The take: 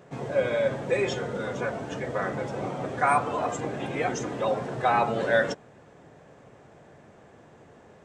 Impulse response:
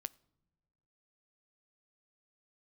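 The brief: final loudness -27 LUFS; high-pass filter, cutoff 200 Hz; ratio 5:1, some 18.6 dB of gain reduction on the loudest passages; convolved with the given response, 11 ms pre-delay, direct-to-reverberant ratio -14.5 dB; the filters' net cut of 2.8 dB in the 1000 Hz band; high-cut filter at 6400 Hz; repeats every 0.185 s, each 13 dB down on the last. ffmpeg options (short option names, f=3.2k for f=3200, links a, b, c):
-filter_complex "[0:a]highpass=200,lowpass=6.4k,equalizer=f=1k:t=o:g=-4,acompressor=threshold=-42dB:ratio=5,aecho=1:1:185|370|555:0.224|0.0493|0.0108,asplit=2[a][b];[1:a]atrim=start_sample=2205,adelay=11[c];[b][c]afir=irnorm=-1:irlink=0,volume=17.5dB[d];[a][d]amix=inputs=2:normalize=0,volume=3dB"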